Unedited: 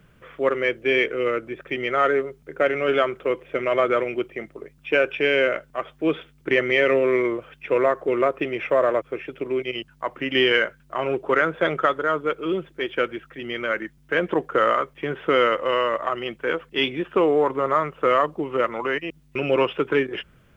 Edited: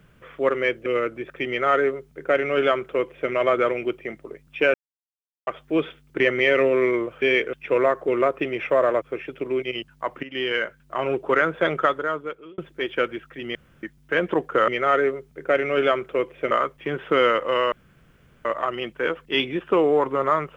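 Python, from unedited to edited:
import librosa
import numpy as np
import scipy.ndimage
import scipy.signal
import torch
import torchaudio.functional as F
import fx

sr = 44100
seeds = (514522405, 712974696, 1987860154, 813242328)

y = fx.edit(x, sr, fx.move(start_s=0.86, length_s=0.31, to_s=7.53),
    fx.duplicate(start_s=1.79, length_s=1.83, to_s=14.68),
    fx.silence(start_s=5.05, length_s=0.73),
    fx.fade_in_from(start_s=10.23, length_s=0.72, floor_db=-14.5),
    fx.fade_out_span(start_s=11.87, length_s=0.71),
    fx.room_tone_fill(start_s=13.55, length_s=0.28),
    fx.insert_room_tone(at_s=15.89, length_s=0.73), tone=tone)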